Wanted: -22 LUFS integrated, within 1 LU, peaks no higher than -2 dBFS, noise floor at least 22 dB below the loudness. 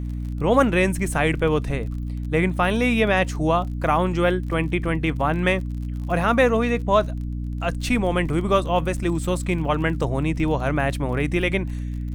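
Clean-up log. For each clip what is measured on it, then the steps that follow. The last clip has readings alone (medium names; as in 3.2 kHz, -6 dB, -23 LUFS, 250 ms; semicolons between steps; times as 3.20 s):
tick rate 32 per s; hum 60 Hz; highest harmonic 300 Hz; hum level -25 dBFS; loudness -22.5 LUFS; peak level -5.0 dBFS; loudness target -22.0 LUFS
-> de-click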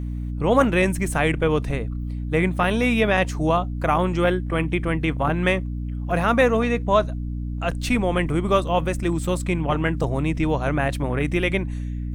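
tick rate 0.99 per s; hum 60 Hz; highest harmonic 300 Hz; hum level -25 dBFS
-> de-hum 60 Hz, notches 5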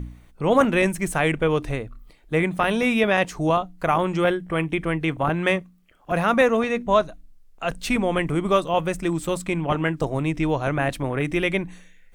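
hum not found; loudness -23.0 LUFS; peak level -5.0 dBFS; loudness target -22.0 LUFS
-> trim +1 dB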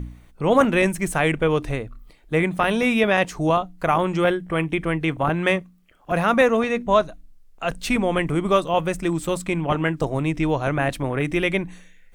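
loudness -22.0 LUFS; peak level -4.0 dBFS; noise floor -51 dBFS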